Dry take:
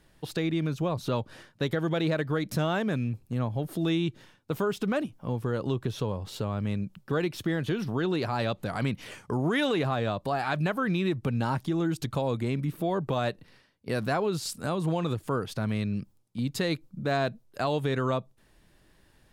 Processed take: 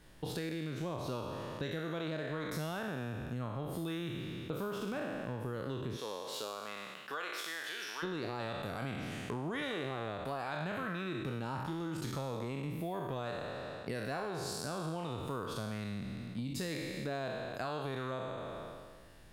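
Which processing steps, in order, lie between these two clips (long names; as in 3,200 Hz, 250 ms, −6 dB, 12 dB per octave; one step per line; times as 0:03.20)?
peak hold with a decay on every bin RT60 1.51 s
0:05.96–0:08.02: high-pass filter 420 Hz → 1,500 Hz 12 dB per octave
downward compressor 4 to 1, threshold −38 dBFS, peak gain reduction 15.5 dB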